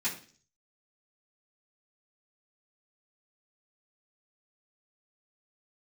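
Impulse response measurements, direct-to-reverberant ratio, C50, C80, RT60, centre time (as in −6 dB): −12.0 dB, 10.0 dB, 14.5 dB, 0.45 s, 21 ms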